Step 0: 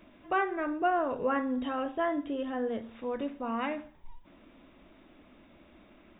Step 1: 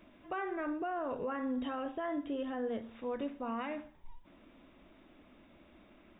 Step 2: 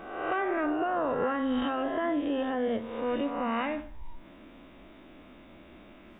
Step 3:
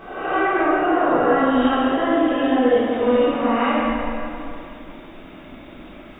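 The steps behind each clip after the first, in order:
limiter -25.5 dBFS, peak gain reduction 9.5 dB; gain -3 dB
spectral swells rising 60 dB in 0.99 s; gain +6 dB
plate-style reverb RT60 2.7 s, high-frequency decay 0.85×, DRR -9 dB; gain +2 dB

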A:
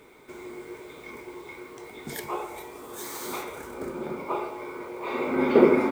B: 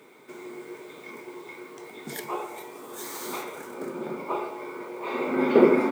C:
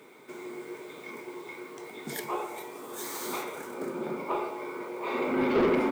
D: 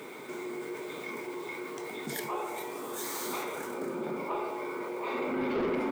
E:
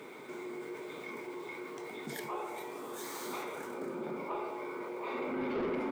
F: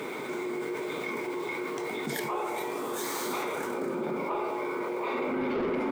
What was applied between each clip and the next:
HPF 140 Hz 24 dB/oct
soft clip -20 dBFS, distortion -7 dB
fast leveller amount 50%; gain -7 dB
high shelf 6100 Hz -6 dB; gain -4 dB
fast leveller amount 50%; gain +4 dB

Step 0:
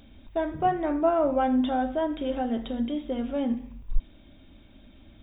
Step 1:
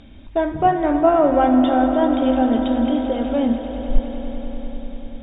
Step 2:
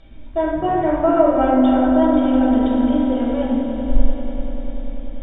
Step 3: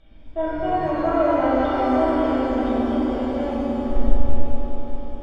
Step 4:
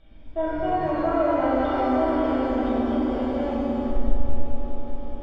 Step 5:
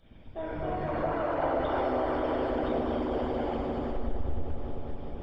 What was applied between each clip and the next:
air absorption 78 m; swelling echo 98 ms, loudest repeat 5, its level -14.5 dB; gain +8 dB
reverb RT60 1.0 s, pre-delay 3 ms, DRR -6 dB; gain -10 dB
shimmer reverb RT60 1.9 s, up +7 st, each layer -8 dB, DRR -3 dB; gain -8.5 dB
air absorption 51 m; in parallel at -1 dB: compressor, threshold -21 dBFS, peak gain reduction 15.5 dB; on the sum: gain -6 dB
harmonic-percussive split harmonic -17 dB; in parallel at -1 dB: limiter -31 dBFS, peak gain reduction 11 dB

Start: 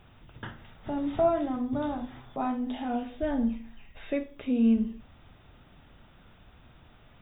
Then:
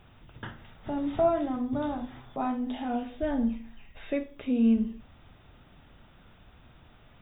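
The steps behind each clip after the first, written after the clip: nothing audible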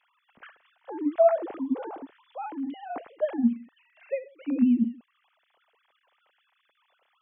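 sine-wave speech; gain +1.5 dB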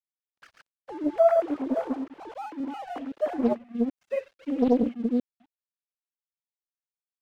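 reverse delay 0.26 s, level -2 dB; crossover distortion -49.5 dBFS; Doppler distortion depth 1 ms

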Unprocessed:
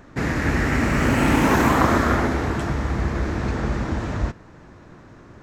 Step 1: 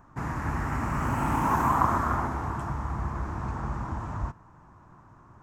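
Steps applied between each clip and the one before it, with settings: graphic EQ 125/250/500/1000/2000/4000 Hz +3/-3/-9/+12/-7/-11 dB; gain -8.5 dB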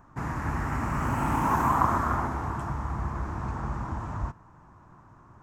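nothing audible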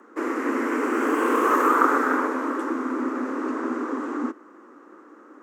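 frequency shift +190 Hz; resonant low shelf 220 Hz -10 dB, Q 1.5; gain +4 dB

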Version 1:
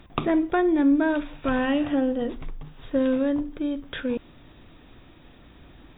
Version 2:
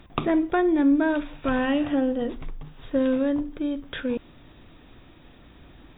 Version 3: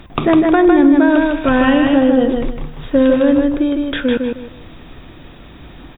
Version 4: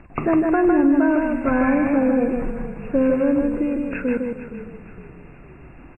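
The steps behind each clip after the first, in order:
nothing audible
feedback echo 0.155 s, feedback 27%, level -4 dB; maximiser +12 dB; gain -1 dB
nonlinear frequency compression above 1500 Hz 1.5:1; low-pass opened by the level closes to 3000 Hz, open at -11 dBFS; frequency-shifting echo 0.463 s, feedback 47%, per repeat -36 Hz, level -14 dB; gain -6.5 dB

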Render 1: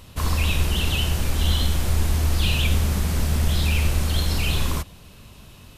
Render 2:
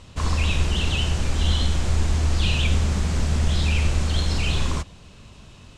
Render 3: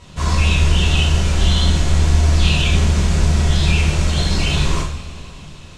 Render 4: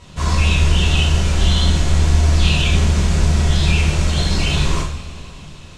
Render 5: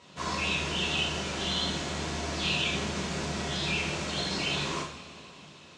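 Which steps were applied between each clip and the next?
Chebyshev low-pass 7600 Hz, order 3
two-slope reverb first 0.48 s, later 3.7 s, from -19 dB, DRR -5.5 dB
nothing audible
BPF 230–6900 Hz; gain -7.5 dB

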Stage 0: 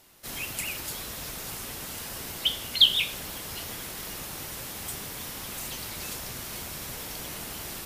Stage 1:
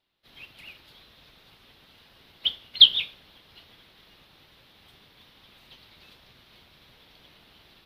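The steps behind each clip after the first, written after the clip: resonant high shelf 5300 Hz -13 dB, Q 3; upward expander 1.5:1, over -45 dBFS; gain -1.5 dB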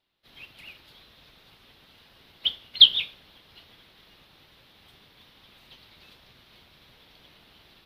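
nothing audible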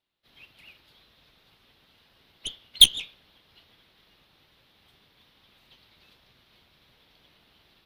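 added harmonics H 3 -21 dB, 6 -26 dB, 7 -15 dB, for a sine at -1 dBFS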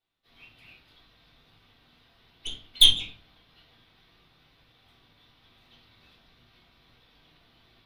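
reverb RT60 0.40 s, pre-delay 3 ms, DRR -6 dB; gain -6.5 dB

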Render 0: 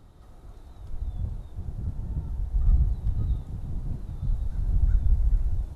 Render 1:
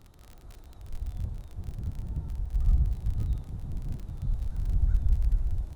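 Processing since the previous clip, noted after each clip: crackle 37/s -34 dBFS; gain -2.5 dB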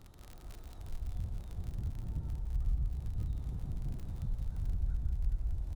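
compressor 2:1, threshold -35 dBFS, peak gain reduction 9.5 dB; on a send: tapped delay 0.167/0.399 s -8/-12 dB; on the sum: gain -1 dB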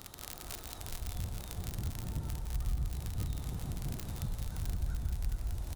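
tilt +2.5 dB/oct; gain +9.5 dB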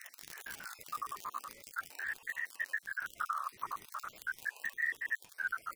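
random spectral dropouts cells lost 57%; hard clip -27.5 dBFS, distortion -23 dB; ring modulator with a swept carrier 1500 Hz, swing 25%, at 0.41 Hz; gain +3 dB

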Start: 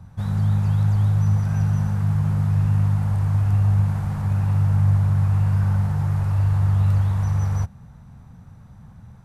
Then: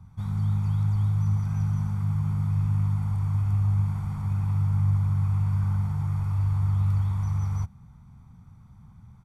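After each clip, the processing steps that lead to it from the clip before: comb 0.9 ms, depth 59%; gain -9 dB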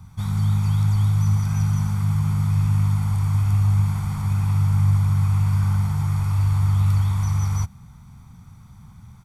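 high shelf 2100 Hz +11.5 dB; gain +5 dB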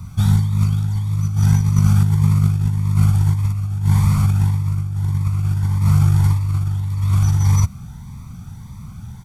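negative-ratio compressor -22 dBFS, ratio -0.5; cascading phaser rising 1.7 Hz; gain +7 dB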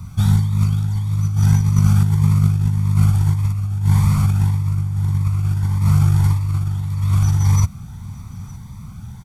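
echo 0.91 s -21 dB

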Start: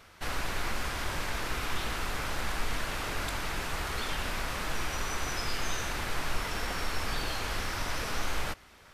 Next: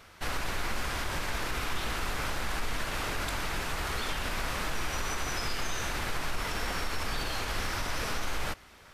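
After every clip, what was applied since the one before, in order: limiter -23.5 dBFS, peak gain reduction 5.5 dB; gain +1.5 dB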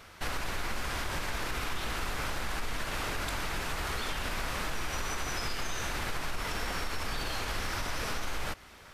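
compressor 2:1, threshold -34 dBFS, peak gain reduction 5 dB; gain +2 dB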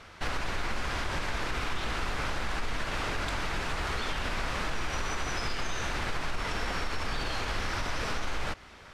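air absorption 60 m; gain +2.5 dB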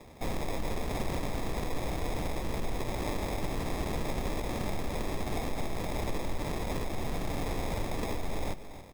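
sample-and-hold 30×; echo 0.282 s -12.5 dB; gain -1 dB

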